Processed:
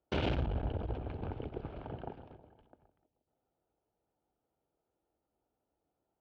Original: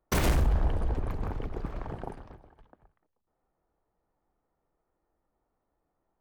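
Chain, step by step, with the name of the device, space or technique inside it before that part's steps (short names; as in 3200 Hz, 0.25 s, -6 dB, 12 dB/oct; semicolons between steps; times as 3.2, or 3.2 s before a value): analogue delay pedal into a guitar amplifier (analogue delay 0.159 s, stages 1024, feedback 53%, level -16.5 dB; tube stage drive 23 dB, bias 0.6; speaker cabinet 75–3500 Hz, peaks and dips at 180 Hz -4 dB, 1100 Hz -10 dB, 1900 Hz -10 dB, 3000 Hz +4 dB)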